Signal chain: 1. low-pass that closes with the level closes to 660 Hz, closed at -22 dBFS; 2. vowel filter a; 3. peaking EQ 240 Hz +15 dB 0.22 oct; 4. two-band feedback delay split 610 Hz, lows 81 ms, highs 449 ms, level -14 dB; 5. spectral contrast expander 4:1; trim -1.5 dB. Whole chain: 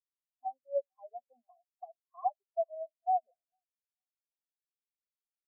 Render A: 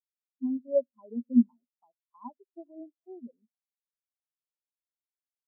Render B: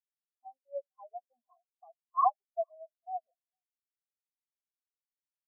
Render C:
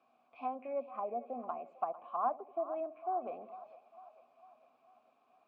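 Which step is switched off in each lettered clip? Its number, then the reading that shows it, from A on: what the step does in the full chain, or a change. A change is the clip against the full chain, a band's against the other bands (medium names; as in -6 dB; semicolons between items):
2, crest factor change +3.0 dB; 1, crest factor change +5.0 dB; 5, loudness change -3.0 LU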